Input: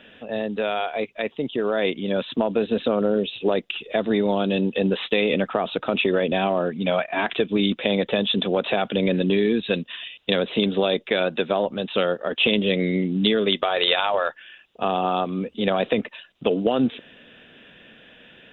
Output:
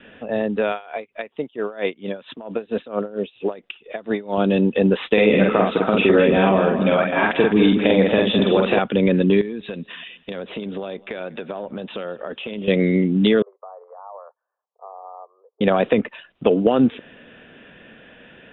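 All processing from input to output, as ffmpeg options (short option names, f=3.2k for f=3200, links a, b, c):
-filter_complex "[0:a]asettb=1/sr,asplit=3[a][b][c];[a]atrim=end=0.724[d];[b]atrim=start=0.72:end=4.38,asetpts=PTS-STARTPTS,afade=t=in:d=0.004:c=qsin,afade=t=out:st=3.656:d=0.004:c=qsin,lowshelf=f=350:g=-8,aeval=exprs='val(0)*pow(10,-19*(0.5-0.5*cos(2*PI*4.4*n/s))/20)':c=same[e];[c]atrim=start=4.376[f];[d][e]acrossfade=d=0.004:c1=hsin:c2=qsin[g];[g][f]acrossfade=d=0.004:c1=qsin:c2=hsin,asettb=1/sr,asplit=3[h][i][j];[h]atrim=end=5.134[k];[i]atrim=start=5.13:end=8.79,asetpts=PTS-STARTPTS,afade=t=in:d=0.004:c=qsin,afade=t=out:st=3.656:d=0.004:c=qsin,asplit=2[l][m];[m]adelay=47,volume=-2dB[n];[l][n]amix=inputs=2:normalize=0,atrim=end_sample=161406,aecho=1:1:209|418|627|836:0.376|0.124|0.0409|0.0135,atrim=end_sample=161406[o];[j]atrim=start=8.786[p];[k][o]acrossfade=d=0.004:c1=hsin:c2=qsin[q];[q][p]acrossfade=d=0.004:c1=qsin:c2=hsin,asettb=1/sr,asplit=3[r][s][t];[r]atrim=end=9.414[u];[s]atrim=start=9.41:end=12.68,asetpts=PTS-STARTPTS,afade=t=in:d=0.004:c=qsin,afade=t=out:st=3.266:d=0.004:c=qsin,acompressor=threshold=-31dB:ratio=5:attack=3.2:release=140:knee=1:detection=peak,aecho=1:1:199|398|597:0.0708|0.029|0.0119,atrim=end_sample=144207[v];[t]atrim=start=12.676[w];[u][v]acrossfade=d=0.004:c1=hsin:c2=qsin[x];[x][w]acrossfade=d=0.004:c1=qsin:c2=hsin,asettb=1/sr,asplit=3[y][z][aa];[y]atrim=end=13.424[ab];[z]atrim=start=13.42:end=15.61,asetpts=PTS-STARTPTS,afade=t=in:d=0.004:c=qsin,afade=t=out:st=2.186:d=0.004:c=qsin,asuperpass=centerf=690:order=12:qfactor=0.94,aderivative[ac];[aa]atrim=start=15.606[ad];[ab][ac]acrossfade=d=0.004:c1=hsin:c2=qsin[ae];[ae][ad]acrossfade=d=0.004:c1=qsin:c2=hsin,lowpass=2.2k,adynamicequalizer=threshold=0.0126:dfrequency=670:dqfactor=3.4:tfrequency=670:tqfactor=3.4:attack=5:release=100:ratio=0.375:range=3:mode=cutabove:tftype=bell,volume=5dB"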